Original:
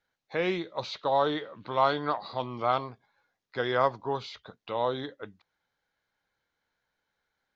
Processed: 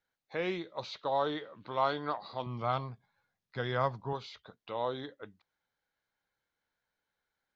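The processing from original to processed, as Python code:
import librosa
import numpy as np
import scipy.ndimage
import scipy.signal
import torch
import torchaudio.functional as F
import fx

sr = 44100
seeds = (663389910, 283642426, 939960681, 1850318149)

y = fx.low_shelf_res(x, sr, hz=230.0, db=7.5, q=1.5, at=(2.46, 4.13))
y = F.gain(torch.from_numpy(y), -5.5).numpy()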